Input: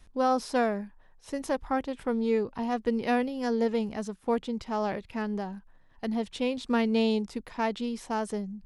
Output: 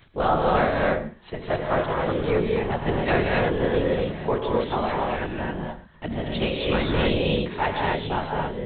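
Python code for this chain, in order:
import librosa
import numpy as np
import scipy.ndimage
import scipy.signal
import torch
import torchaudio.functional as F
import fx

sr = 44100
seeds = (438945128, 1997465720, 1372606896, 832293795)

y = fx.lpc_vocoder(x, sr, seeds[0], excitation='whisper', order=8)
y = fx.tilt_eq(y, sr, slope=2.0)
y = y + 10.0 ** (-19.0 / 20.0) * np.pad(y, (int(108 * sr / 1000.0), 0))[:len(y)]
y = fx.rev_gated(y, sr, seeds[1], gate_ms=300, shape='rising', drr_db=-1.5)
y = F.gain(torch.from_numpy(y), 5.0).numpy()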